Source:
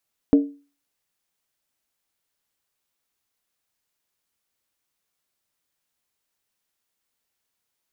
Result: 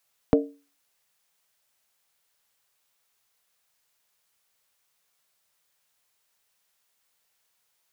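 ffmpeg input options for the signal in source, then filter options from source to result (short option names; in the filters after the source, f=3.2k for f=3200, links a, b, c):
-f lavfi -i "aevalsrc='0.398*pow(10,-3*t/0.35)*sin(2*PI*284*t)+0.126*pow(10,-3*t/0.277)*sin(2*PI*452.7*t)+0.0398*pow(10,-3*t/0.239)*sin(2*PI*606.6*t)+0.0126*pow(10,-3*t/0.231)*sin(2*PI*652.1*t)+0.00398*pow(10,-3*t/0.215)*sin(2*PI*753.5*t)':d=0.63:s=44100"
-filter_complex "[0:a]equalizer=f=290:t=o:w=0.6:g=-13.5,acrossover=split=180[a][b];[b]acontrast=72[c];[a][c]amix=inputs=2:normalize=0"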